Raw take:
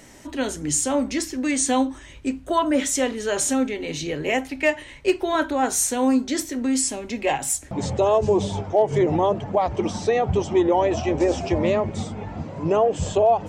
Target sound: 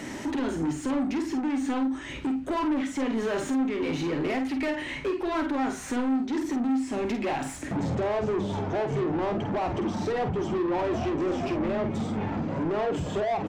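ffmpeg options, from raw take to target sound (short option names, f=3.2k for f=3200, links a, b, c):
-filter_complex "[0:a]acrossover=split=2500[a][b];[b]acompressor=threshold=-39dB:ratio=4:attack=1:release=60[c];[a][c]amix=inputs=2:normalize=0,lowshelf=f=390:t=q:w=1.5:g=7.5,acompressor=threshold=-27dB:ratio=4,asplit=2[d][e];[e]highpass=f=720:p=1,volume=25dB,asoftclip=type=tanh:threshold=-17dB[f];[d][f]amix=inputs=2:normalize=0,lowpass=f=1.8k:p=1,volume=-6dB,asplit=2[g][h];[h]adelay=49,volume=-7.5dB[i];[g][i]amix=inputs=2:normalize=0,volume=-4dB"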